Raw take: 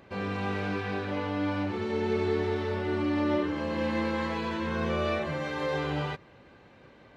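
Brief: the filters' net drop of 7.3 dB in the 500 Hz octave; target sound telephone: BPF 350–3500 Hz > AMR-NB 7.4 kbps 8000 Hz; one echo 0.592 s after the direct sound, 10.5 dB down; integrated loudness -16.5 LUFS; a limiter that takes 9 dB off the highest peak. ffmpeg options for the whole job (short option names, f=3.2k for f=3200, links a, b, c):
-af "equalizer=f=500:t=o:g=-7.5,alimiter=level_in=4.5dB:limit=-24dB:level=0:latency=1,volume=-4.5dB,highpass=350,lowpass=3.5k,aecho=1:1:592:0.299,volume=25dB" -ar 8000 -c:a libopencore_amrnb -b:a 7400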